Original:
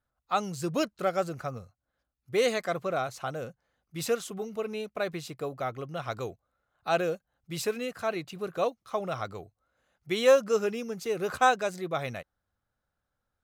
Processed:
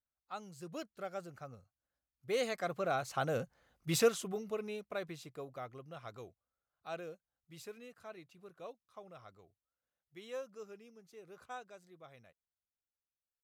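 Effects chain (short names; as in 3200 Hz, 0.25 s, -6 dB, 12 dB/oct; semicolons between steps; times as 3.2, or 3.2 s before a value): Doppler pass-by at 3.64, 7 m/s, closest 1.8 m; gain +5.5 dB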